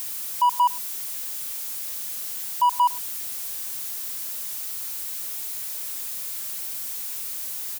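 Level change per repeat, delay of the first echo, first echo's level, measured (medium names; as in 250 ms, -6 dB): no regular repeats, 107 ms, -23.5 dB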